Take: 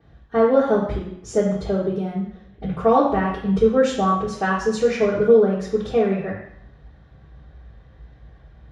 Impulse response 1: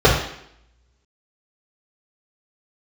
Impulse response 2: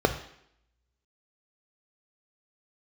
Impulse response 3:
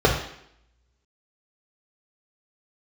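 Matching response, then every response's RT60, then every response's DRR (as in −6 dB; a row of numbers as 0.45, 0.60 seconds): 1; 0.70, 0.70, 0.70 seconds; −7.0, 6.0, −2.5 decibels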